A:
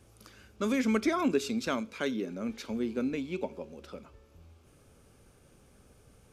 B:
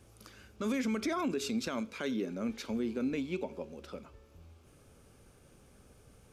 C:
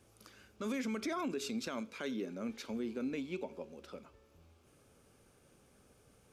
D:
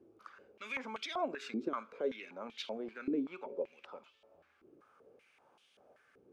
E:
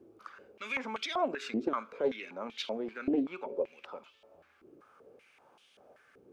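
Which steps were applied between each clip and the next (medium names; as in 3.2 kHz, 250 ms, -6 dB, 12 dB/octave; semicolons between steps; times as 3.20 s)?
peak limiter -25 dBFS, peak gain reduction 9.5 dB
bass shelf 100 Hz -9.5 dB; trim -3.5 dB
step-sequenced band-pass 5.2 Hz 350–3200 Hz; trim +12 dB
loudspeaker Doppler distortion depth 0.18 ms; trim +5 dB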